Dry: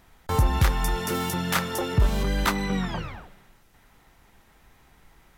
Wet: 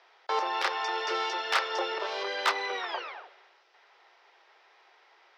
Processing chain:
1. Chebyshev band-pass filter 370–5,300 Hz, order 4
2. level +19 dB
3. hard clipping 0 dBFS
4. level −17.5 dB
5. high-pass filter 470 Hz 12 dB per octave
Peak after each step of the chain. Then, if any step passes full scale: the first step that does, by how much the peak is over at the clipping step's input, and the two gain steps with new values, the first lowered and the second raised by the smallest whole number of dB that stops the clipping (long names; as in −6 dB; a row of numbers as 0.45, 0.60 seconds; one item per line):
−10.0, +9.0, 0.0, −17.5, −13.5 dBFS
step 2, 9.0 dB
step 2 +10 dB, step 4 −8.5 dB